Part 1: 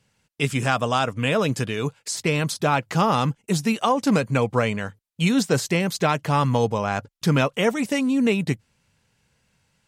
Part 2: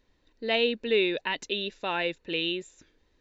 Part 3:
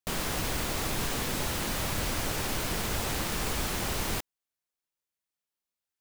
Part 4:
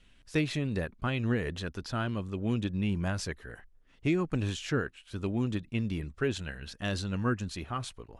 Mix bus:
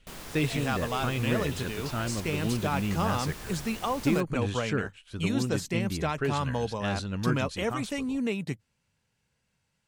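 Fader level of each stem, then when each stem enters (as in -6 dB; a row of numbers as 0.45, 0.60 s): -9.5, -17.0, -11.0, 0.0 dB; 0.00, 0.00, 0.00, 0.00 s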